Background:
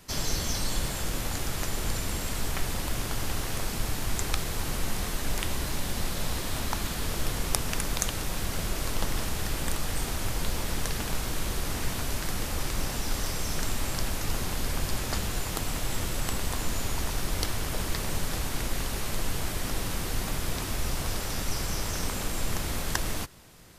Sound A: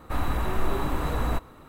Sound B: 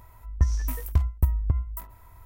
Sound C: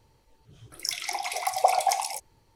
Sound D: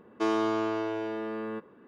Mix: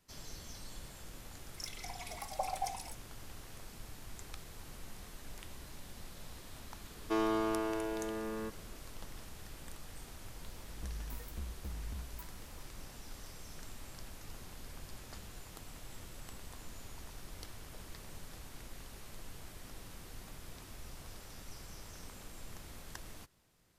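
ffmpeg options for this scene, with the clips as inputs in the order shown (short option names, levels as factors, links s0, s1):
-filter_complex "[0:a]volume=0.112[s0];[3:a]asplit=2[s1][s2];[s2]adelay=3.4,afreqshift=-1.1[s3];[s1][s3]amix=inputs=2:normalize=1[s4];[2:a]asoftclip=type=tanh:threshold=0.0447[s5];[s4]atrim=end=2.55,asetpts=PTS-STARTPTS,volume=0.251,afade=t=in:d=0.004:c=hsin,afade=t=out:st=2.546:d=0.004:c=hsin,adelay=750[s6];[4:a]atrim=end=1.87,asetpts=PTS-STARTPTS,volume=0.562,afade=t=in:d=0.004:c=hsin,afade=t=out:st=1.866:d=0.004:c=hsin,adelay=304290S[s7];[s5]atrim=end=2.25,asetpts=PTS-STARTPTS,volume=0.251,afade=t=in:d=0.004:c=hsin,afade=t=out:st=2.246:d=0.004:c=hsin,adelay=459522S[s8];[s0][s6][s7][s8]amix=inputs=4:normalize=0"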